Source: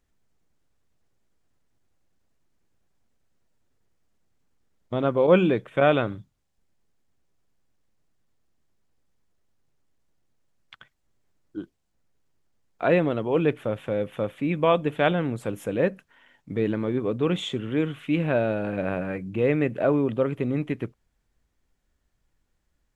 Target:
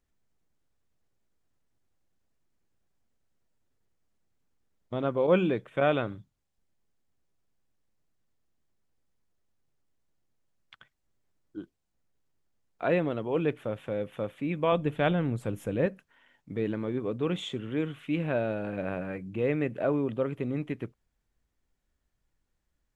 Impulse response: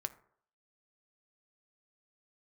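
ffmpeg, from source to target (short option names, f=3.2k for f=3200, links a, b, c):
-filter_complex "[0:a]asettb=1/sr,asplit=3[a][b][c];[a]atrim=end=14.724[d];[b]atrim=start=14.72:end=15.86,asetpts=PTS-STARTPTS,afade=t=in:d=0.004:c=qsin,afade=t=out:st=1.136:d=0.004:c=qsin,lowshelf=f=140:g=11.5[e];[c]atrim=start=15.856[f];[d][e]acrossfade=d=0.004:c1=hsin:c2=qsin[g];[g][f]acrossfade=d=0.004:c1=qsin:c2=hsin,volume=-5.5dB"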